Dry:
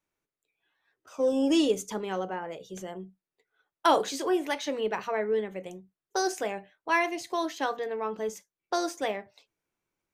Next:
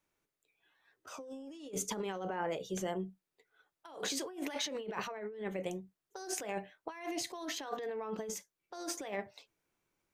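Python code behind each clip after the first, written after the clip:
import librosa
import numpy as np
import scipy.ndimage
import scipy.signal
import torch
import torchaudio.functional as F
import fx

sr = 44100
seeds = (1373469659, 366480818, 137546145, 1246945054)

y = fx.over_compress(x, sr, threshold_db=-37.0, ratio=-1.0)
y = y * 10.0 ** (-4.0 / 20.0)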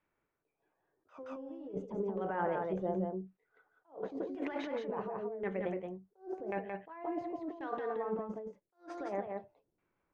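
y = fx.filter_lfo_lowpass(x, sr, shape='saw_down', hz=0.92, low_hz=390.0, high_hz=2100.0, q=1.1)
y = y + 10.0 ** (-4.0 / 20.0) * np.pad(y, (int(173 * sr / 1000.0), 0))[:len(y)]
y = fx.attack_slew(y, sr, db_per_s=220.0)
y = y * 10.0 ** (1.0 / 20.0)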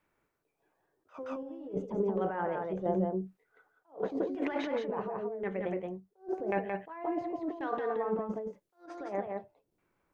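y = fx.tremolo_random(x, sr, seeds[0], hz=3.5, depth_pct=55)
y = y * 10.0 ** (6.5 / 20.0)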